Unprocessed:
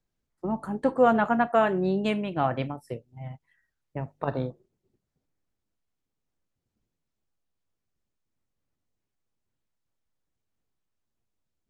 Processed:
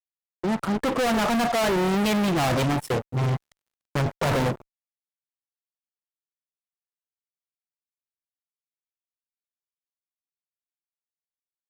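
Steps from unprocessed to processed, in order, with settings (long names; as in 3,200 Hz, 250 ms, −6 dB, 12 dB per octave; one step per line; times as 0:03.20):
fade in at the beginning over 3.43 s
fuzz pedal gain 49 dB, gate −58 dBFS
0:03.31–0:03.97: surface crackle 78 per second → 20 per second −53 dBFS
level −8 dB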